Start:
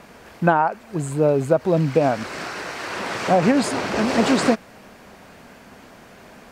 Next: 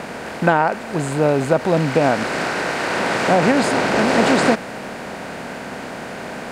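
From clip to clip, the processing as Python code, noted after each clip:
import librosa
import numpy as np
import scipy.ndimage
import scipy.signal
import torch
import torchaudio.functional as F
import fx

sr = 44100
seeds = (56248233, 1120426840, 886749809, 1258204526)

y = fx.bin_compress(x, sr, power=0.6)
y = fx.peak_eq(y, sr, hz=2000.0, db=5.0, octaves=1.1)
y = F.gain(torch.from_numpy(y), -1.5).numpy()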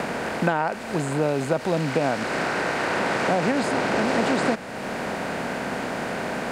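y = fx.band_squash(x, sr, depth_pct=70)
y = F.gain(torch.from_numpy(y), -6.5).numpy()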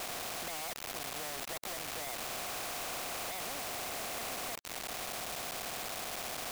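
y = fx.vowel_filter(x, sr, vowel='a')
y = fx.quant_companded(y, sr, bits=2)
y = fx.spectral_comp(y, sr, ratio=2.0)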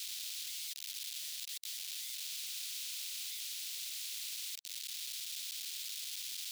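y = fx.ladder_highpass(x, sr, hz=2900.0, resonance_pct=35)
y = F.gain(torch.from_numpy(y), 6.0).numpy()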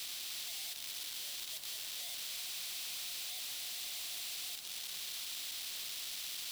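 y = x + 0.5 * 10.0 ** (-39.0 / 20.0) * np.sign(x)
y = fx.notch(y, sr, hz=6700.0, q=24.0)
y = y + 10.0 ** (-8.5 / 20.0) * np.pad(y, (int(304 * sr / 1000.0), 0))[:len(y)]
y = F.gain(torch.from_numpy(y), -4.5).numpy()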